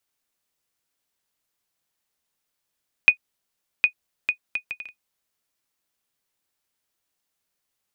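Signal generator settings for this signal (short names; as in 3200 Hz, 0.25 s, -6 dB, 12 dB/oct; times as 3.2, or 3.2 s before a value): bouncing ball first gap 0.76 s, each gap 0.59, 2480 Hz, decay 91 ms -2.5 dBFS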